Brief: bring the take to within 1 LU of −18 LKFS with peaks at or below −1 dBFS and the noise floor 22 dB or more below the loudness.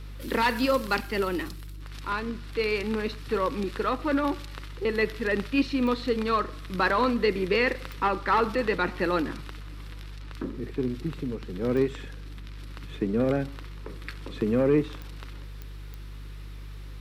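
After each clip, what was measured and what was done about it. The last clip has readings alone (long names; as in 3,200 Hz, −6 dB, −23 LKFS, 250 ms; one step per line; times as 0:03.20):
number of clicks 6; mains hum 50 Hz; hum harmonics up to 150 Hz; level of the hum −37 dBFS; integrated loudness −27.5 LKFS; sample peak −11.5 dBFS; target loudness −18.0 LKFS
→ click removal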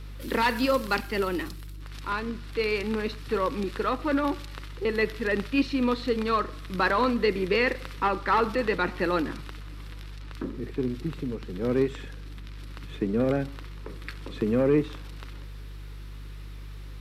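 number of clicks 0; mains hum 50 Hz; hum harmonics up to 150 Hz; level of the hum −37 dBFS
→ hum removal 50 Hz, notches 3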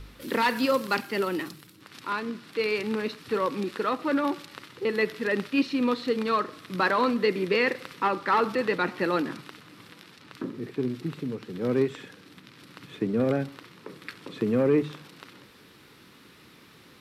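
mains hum none found; integrated loudness −27.5 LKFS; sample peak −12.0 dBFS; target loudness −18.0 LKFS
→ level +9.5 dB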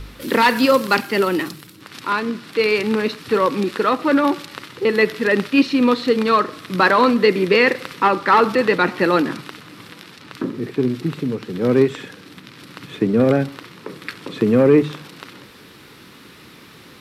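integrated loudness −18.0 LKFS; sample peak −2.5 dBFS; background noise floor −44 dBFS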